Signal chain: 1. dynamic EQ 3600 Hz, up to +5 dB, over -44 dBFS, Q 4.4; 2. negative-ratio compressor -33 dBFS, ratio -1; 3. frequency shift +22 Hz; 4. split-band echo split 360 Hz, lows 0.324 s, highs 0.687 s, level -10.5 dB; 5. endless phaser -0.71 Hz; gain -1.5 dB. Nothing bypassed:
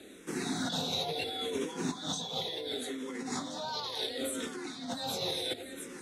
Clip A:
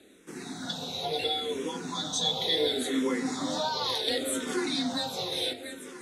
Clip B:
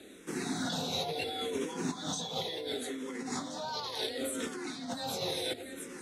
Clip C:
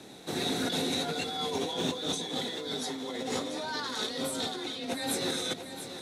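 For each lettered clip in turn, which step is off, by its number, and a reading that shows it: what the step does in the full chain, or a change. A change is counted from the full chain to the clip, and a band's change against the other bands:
2, momentary loudness spread change +4 LU; 1, 4 kHz band -2.0 dB; 5, loudness change +3.0 LU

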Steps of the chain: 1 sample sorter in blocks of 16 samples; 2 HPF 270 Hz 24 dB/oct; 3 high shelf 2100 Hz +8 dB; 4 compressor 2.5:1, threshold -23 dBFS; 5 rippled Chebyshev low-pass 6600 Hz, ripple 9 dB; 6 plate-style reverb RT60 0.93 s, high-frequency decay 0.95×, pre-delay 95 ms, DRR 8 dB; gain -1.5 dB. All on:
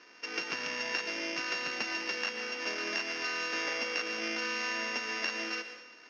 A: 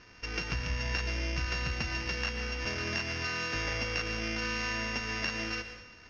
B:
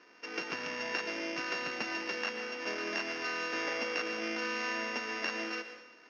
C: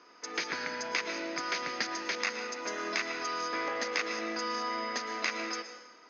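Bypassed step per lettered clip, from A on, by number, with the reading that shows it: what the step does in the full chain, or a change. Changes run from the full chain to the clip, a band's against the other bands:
2, 250 Hz band +3.5 dB; 3, 8 kHz band -5.5 dB; 1, distortion -6 dB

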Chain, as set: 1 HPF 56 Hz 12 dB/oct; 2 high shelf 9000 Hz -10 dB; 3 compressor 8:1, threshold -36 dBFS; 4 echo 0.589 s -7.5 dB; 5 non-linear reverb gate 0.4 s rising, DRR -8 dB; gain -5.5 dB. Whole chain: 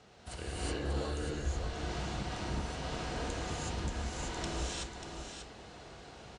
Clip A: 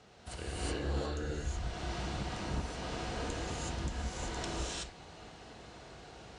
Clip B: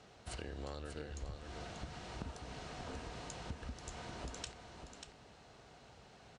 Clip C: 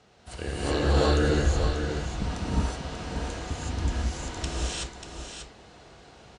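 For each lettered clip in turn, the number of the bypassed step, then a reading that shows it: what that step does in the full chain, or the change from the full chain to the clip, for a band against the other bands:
4, momentary loudness spread change +3 LU; 5, echo-to-direct 9.0 dB to -7.5 dB; 3, mean gain reduction 3.5 dB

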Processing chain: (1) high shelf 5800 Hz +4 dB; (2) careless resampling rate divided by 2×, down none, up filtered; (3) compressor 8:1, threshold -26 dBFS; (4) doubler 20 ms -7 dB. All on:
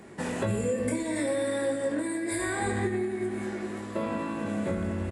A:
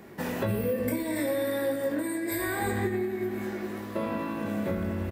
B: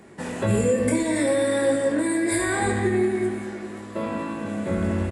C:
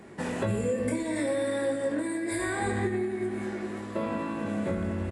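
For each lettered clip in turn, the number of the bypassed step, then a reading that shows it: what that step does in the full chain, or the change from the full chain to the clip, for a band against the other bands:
2, 8 kHz band -3.5 dB; 3, mean gain reduction 5.0 dB; 1, 8 kHz band -3.0 dB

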